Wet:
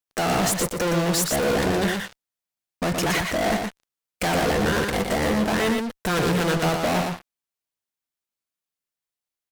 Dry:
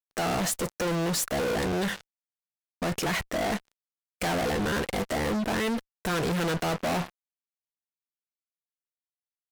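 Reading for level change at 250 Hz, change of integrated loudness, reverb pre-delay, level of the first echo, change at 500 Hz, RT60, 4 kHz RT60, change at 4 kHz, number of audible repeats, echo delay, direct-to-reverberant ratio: +5.5 dB, +5.5 dB, no reverb, -4.5 dB, +6.0 dB, no reverb, no reverb, +6.0 dB, 1, 118 ms, no reverb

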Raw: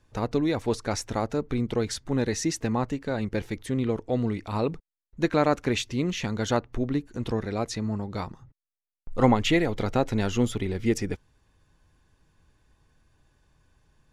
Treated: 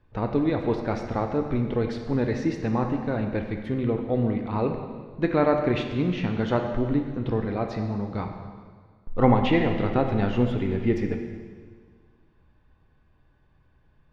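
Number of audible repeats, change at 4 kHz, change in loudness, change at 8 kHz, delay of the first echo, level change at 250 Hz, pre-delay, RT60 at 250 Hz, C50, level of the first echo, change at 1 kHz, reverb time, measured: no echo, -5.5 dB, +1.5 dB, under -15 dB, no echo, +2.0 dB, 9 ms, 1.8 s, 6.0 dB, no echo, +1.5 dB, 1.7 s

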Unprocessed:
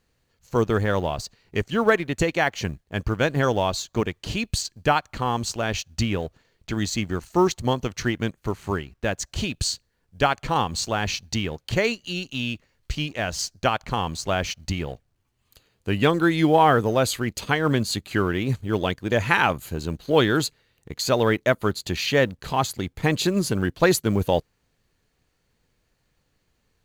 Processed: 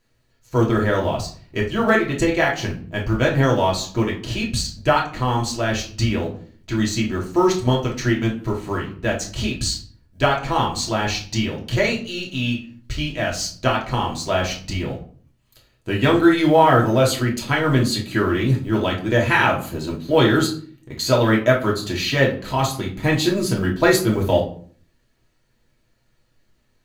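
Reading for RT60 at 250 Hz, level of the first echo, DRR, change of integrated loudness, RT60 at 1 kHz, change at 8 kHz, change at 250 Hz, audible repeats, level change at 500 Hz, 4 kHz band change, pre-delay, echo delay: 0.70 s, no echo, -3.0 dB, +3.5 dB, 0.45 s, +1.5 dB, +4.5 dB, no echo, +3.5 dB, +3.0 dB, 3 ms, no echo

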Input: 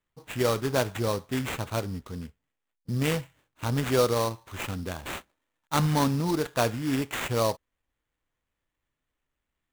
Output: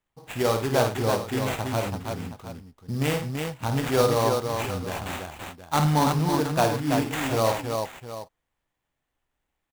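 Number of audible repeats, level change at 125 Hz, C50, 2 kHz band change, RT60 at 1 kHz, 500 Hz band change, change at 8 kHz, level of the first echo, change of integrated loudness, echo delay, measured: 4, +3.0 dB, no reverb, +2.5 dB, no reverb, +3.5 dB, +2.0 dB, -7.0 dB, +2.5 dB, 53 ms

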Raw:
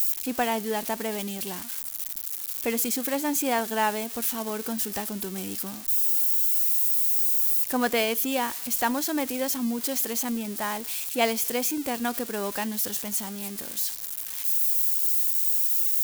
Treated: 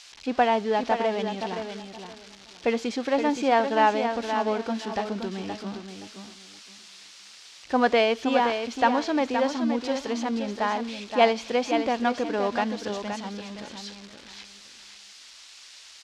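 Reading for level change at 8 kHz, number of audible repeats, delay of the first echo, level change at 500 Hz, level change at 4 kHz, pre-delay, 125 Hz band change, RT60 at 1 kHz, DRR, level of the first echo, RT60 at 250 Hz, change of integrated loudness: -15.5 dB, 3, 521 ms, +6.0 dB, 0.0 dB, no reverb, no reading, no reverb, no reverb, -7.5 dB, no reverb, -1.5 dB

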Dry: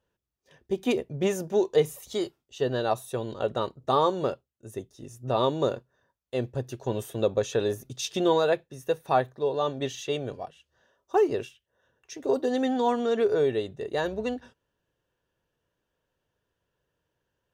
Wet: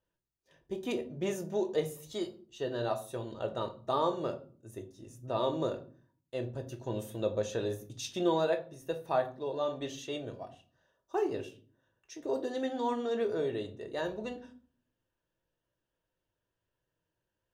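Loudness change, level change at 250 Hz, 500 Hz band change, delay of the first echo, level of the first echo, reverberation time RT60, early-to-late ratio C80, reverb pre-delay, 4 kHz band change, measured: -7.0 dB, -6.0 dB, -7.0 dB, no echo, no echo, 0.45 s, 18.5 dB, 3 ms, -7.0 dB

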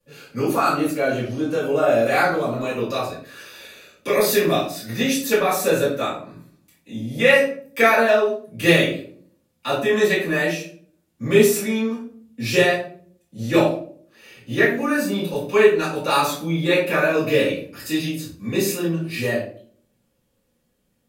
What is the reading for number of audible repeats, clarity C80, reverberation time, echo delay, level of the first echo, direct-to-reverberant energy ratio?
no echo, 9.0 dB, 0.50 s, no echo, no echo, -13.0 dB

